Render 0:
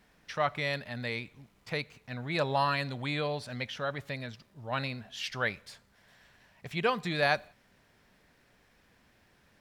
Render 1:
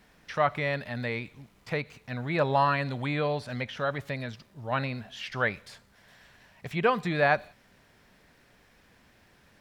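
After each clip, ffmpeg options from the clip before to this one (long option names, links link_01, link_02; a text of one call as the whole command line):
ffmpeg -i in.wav -filter_complex "[0:a]acrossover=split=2500[link_01][link_02];[link_02]acompressor=threshold=-49dB:ratio=4:attack=1:release=60[link_03];[link_01][link_03]amix=inputs=2:normalize=0,volume=4.5dB" out.wav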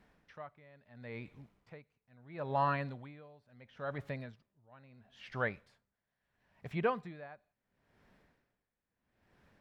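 ffmpeg -i in.wav -af "highshelf=frequency=2700:gain=-11.5,aeval=exprs='val(0)*pow(10,-24*(0.5-0.5*cos(2*PI*0.74*n/s))/20)':channel_layout=same,volume=-5dB" out.wav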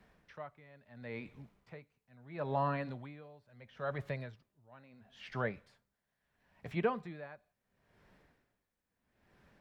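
ffmpeg -i in.wav -filter_complex "[0:a]acrossover=split=130|680[link_01][link_02][link_03];[link_03]alimiter=level_in=7.5dB:limit=-24dB:level=0:latency=1:release=188,volume=-7.5dB[link_04];[link_01][link_02][link_04]amix=inputs=3:normalize=0,flanger=delay=1.7:depth=3.5:regen=-77:speed=0.26:shape=sinusoidal,volume=6dB" out.wav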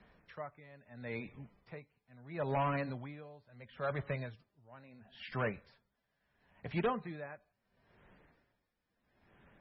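ffmpeg -i in.wav -af "asoftclip=type=hard:threshold=-30dB,volume=2.5dB" -ar 24000 -c:a libmp3lame -b:a 16k out.mp3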